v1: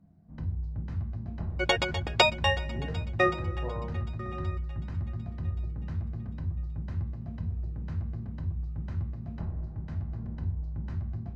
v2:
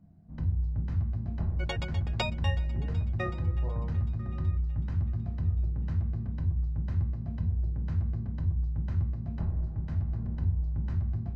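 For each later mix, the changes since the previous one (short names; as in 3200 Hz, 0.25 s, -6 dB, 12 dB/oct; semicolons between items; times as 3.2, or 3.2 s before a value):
speech -5.5 dB; first sound: add low shelf 120 Hz +6 dB; second sound -11.0 dB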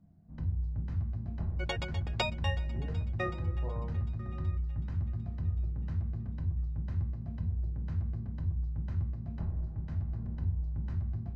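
first sound -4.0 dB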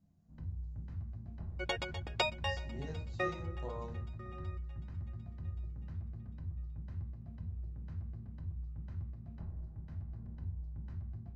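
speech: remove LPF 1600 Hz 24 dB/oct; first sound -9.0 dB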